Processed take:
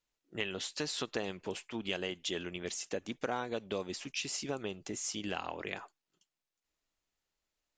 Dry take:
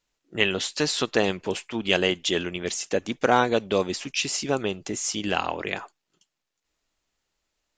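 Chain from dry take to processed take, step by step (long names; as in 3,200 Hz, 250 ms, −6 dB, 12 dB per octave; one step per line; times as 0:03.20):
downward compressor 3 to 1, threshold −24 dBFS, peak gain reduction 8.5 dB
level −9 dB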